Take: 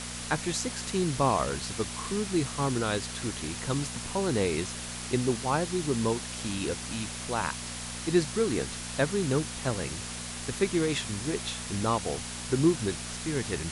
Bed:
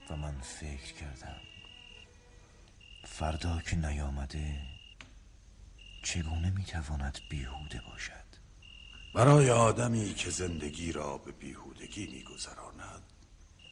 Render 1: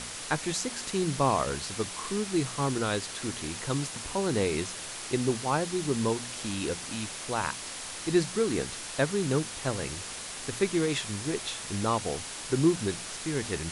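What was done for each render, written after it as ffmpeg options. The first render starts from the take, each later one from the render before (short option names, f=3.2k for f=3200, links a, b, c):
-af "bandreject=f=60:t=h:w=4,bandreject=f=120:t=h:w=4,bandreject=f=180:t=h:w=4,bandreject=f=240:t=h:w=4"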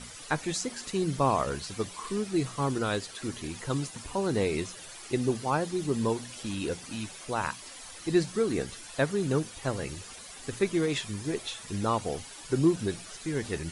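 -af "afftdn=nr=12:nf=-40"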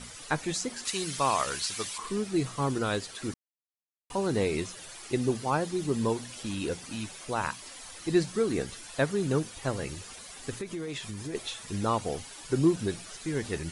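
-filter_complex "[0:a]asettb=1/sr,asplit=3[a][b][c];[a]atrim=end=0.854[d];[b]atrim=start=0.85:end=1.98,asetpts=PTS-STARTPTS,afade=t=in:d=0.004:c=qsin,afade=t=out:st=1.126:d=0.004:c=qsin,tiltshelf=f=930:g=-9[e];[c]atrim=start=1.976[f];[d][e]acrossfade=d=0.004:c1=hsin:c2=qsin[g];[g][f]acrossfade=d=0.004:c1=qsin:c2=hsin,asettb=1/sr,asplit=3[h][i][j];[h]atrim=end=10.584[k];[i]atrim=start=10.58:end=11.35,asetpts=PTS-STARTPTS,afade=t=in:d=0.004:c=qsin,afade=t=out:st=0.766:d=0.004:c=qsin,acompressor=threshold=-33dB:ratio=5:attack=3.2:release=140:knee=1:detection=peak[l];[j]atrim=start=11.346[m];[k][l]acrossfade=d=0.004:c1=hsin:c2=qsin[n];[n][m]acrossfade=d=0.004:c1=qsin:c2=hsin,asplit=3[o][p][q];[o]atrim=end=3.34,asetpts=PTS-STARTPTS,afade=t=out:st=3.336:d=0.004:c=hsin[r];[p]atrim=start=3.34:end=4.1,asetpts=PTS-STARTPTS,volume=0[s];[q]atrim=start=4.1,asetpts=PTS-STARTPTS,afade=t=in:d=0.004:c=hsin[t];[r][s][t]concat=n=3:v=0:a=1"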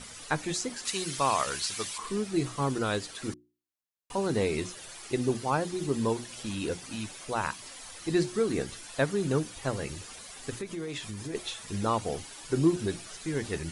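-af "bandreject=f=60:t=h:w=6,bandreject=f=120:t=h:w=6,bandreject=f=180:t=h:w=6,bandreject=f=240:t=h:w=6,bandreject=f=300:t=h:w=6,bandreject=f=360:t=h:w=6"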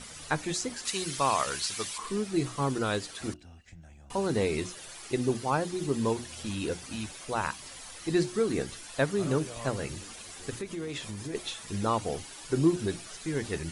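-filter_complex "[1:a]volume=-18dB[a];[0:a][a]amix=inputs=2:normalize=0"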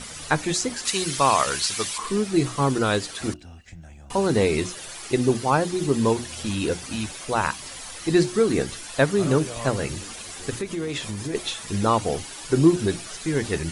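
-af "volume=7.5dB"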